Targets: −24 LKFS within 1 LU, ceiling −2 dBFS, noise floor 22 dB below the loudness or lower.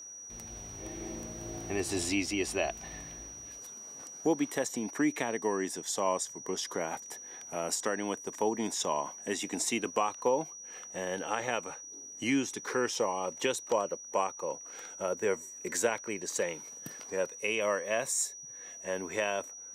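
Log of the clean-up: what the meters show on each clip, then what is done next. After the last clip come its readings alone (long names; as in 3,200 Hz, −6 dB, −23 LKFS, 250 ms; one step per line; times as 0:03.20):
number of dropouts 1; longest dropout 1.1 ms; interfering tone 5,800 Hz; level of the tone −44 dBFS; integrated loudness −33.5 LKFS; sample peak −15.5 dBFS; target loudness −24.0 LKFS
→ repair the gap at 0:01.58, 1.1 ms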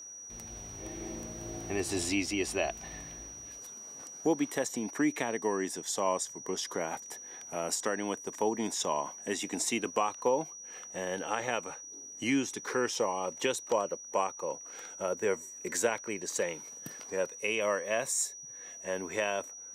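number of dropouts 0; interfering tone 5,800 Hz; level of the tone −44 dBFS
→ notch filter 5,800 Hz, Q 30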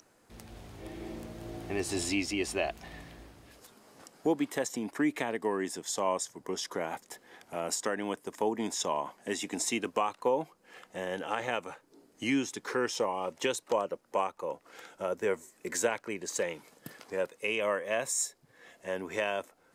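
interfering tone none found; integrated loudness −33.5 LKFS; sample peak −16.0 dBFS; target loudness −24.0 LKFS
→ level +9.5 dB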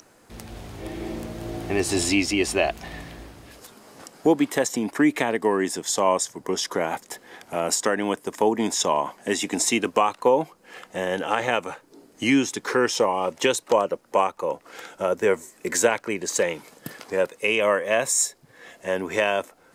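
integrated loudness −24.0 LKFS; sample peak −6.5 dBFS; background noise floor −56 dBFS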